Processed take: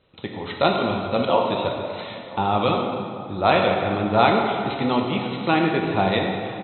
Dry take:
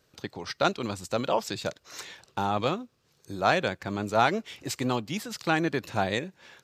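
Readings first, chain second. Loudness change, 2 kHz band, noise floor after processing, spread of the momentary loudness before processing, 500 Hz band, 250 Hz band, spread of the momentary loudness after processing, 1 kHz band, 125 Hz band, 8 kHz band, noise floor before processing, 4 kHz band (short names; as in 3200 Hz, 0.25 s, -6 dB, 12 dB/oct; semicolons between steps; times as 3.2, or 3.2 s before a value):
+7.0 dB, +4.0 dB, -38 dBFS, 16 LU, +8.0 dB, +8.0 dB, 12 LU, +7.5 dB, +7.0 dB, under -40 dB, -68 dBFS, +6.0 dB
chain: brick-wall FIR low-pass 4100 Hz; bell 1600 Hz -10.5 dB 0.25 oct; outdoor echo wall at 170 m, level -20 dB; plate-style reverb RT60 2.4 s, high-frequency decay 0.65×, pre-delay 0 ms, DRR 0 dB; gain +5 dB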